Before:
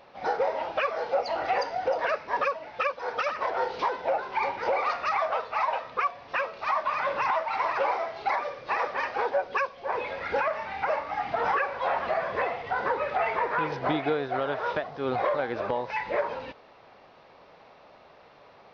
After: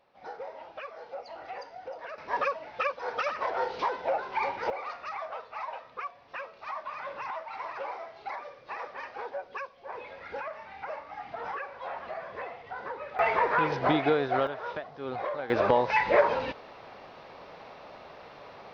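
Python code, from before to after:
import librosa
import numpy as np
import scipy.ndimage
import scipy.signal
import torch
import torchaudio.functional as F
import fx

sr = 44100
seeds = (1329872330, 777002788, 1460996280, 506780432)

y = fx.gain(x, sr, db=fx.steps((0.0, -14.0), (2.18, -2.0), (4.7, -10.5), (13.19, 2.0), (14.47, -7.0), (15.5, 6.0)))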